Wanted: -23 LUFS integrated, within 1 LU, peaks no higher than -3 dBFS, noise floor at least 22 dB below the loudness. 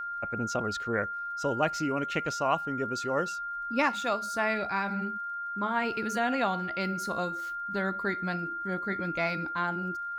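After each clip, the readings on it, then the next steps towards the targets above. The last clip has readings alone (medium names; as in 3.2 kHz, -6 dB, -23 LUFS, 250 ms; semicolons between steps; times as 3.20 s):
tick rate 28 per s; steady tone 1.4 kHz; tone level -33 dBFS; loudness -30.5 LUFS; peak level -13.0 dBFS; loudness target -23.0 LUFS
-> de-click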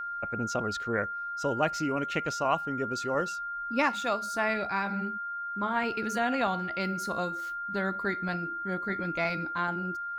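tick rate 0.29 per s; steady tone 1.4 kHz; tone level -33 dBFS
-> band-stop 1.4 kHz, Q 30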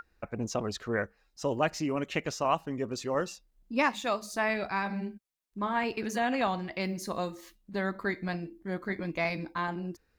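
steady tone not found; loudness -32.5 LUFS; peak level -14.0 dBFS; loudness target -23.0 LUFS
-> trim +9.5 dB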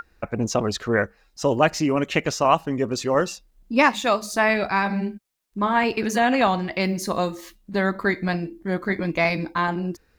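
loudness -23.0 LUFS; peak level -4.5 dBFS; noise floor -62 dBFS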